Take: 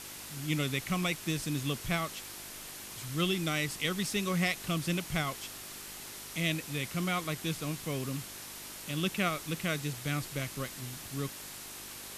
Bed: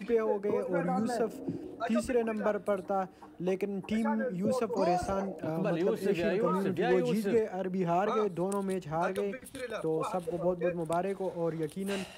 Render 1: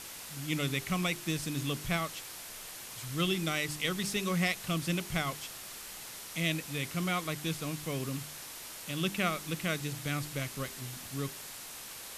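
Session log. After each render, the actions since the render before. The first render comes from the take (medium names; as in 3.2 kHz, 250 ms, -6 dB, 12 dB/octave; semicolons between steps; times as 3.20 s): de-hum 50 Hz, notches 8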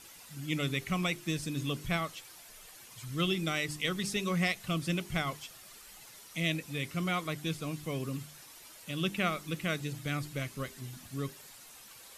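noise reduction 10 dB, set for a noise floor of -45 dBFS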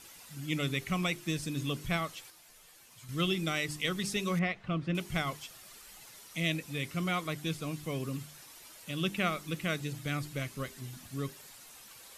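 2.30–3.09 s: feedback comb 81 Hz, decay 0.2 s, mix 80%; 4.39–4.95 s: low-pass 2.1 kHz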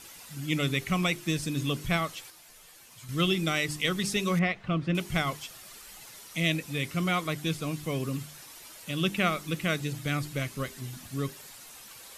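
trim +4.5 dB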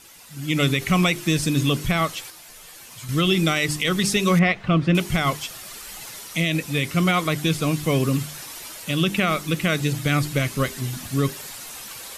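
level rider gain up to 11 dB; peak limiter -9.5 dBFS, peak gain reduction 7 dB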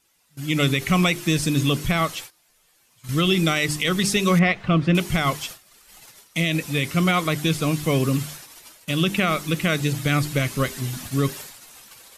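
gate -35 dBFS, range -18 dB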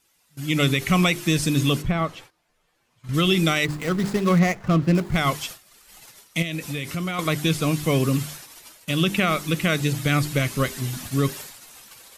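1.81–3.13 s: low-pass 1 kHz -> 1.7 kHz 6 dB/octave; 3.65–5.16 s: median filter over 15 samples; 6.42–7.19 s: compression 4:1, threshold -25 dBFS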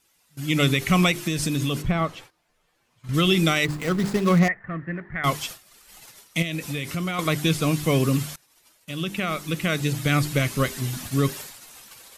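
1.11–1.83 s: compression, threshold -20 dBFS; 4.48–5.24 s: four-pole ladder low-pass 1.9 kHz, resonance 85%; 8.36–10.19 s: fade in, from -21.5 dB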